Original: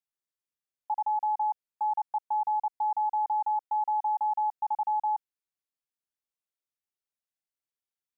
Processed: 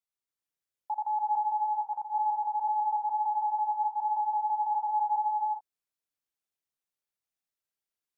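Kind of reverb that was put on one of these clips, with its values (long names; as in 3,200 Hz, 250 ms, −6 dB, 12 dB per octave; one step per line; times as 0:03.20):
reverb whose tail is shaped and stops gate 450 ms rising, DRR −1 dB
level −2.5 dB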